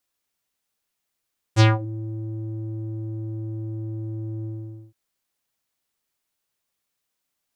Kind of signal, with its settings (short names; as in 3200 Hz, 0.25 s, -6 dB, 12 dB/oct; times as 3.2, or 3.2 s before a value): synth note square A2 12 dB/oct, low-pass 280 Hz, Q 2.4, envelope 5 oct, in 0.29 s, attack 43 ms, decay 0.18 s, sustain -20 dB, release 0.48 s, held 2.89 s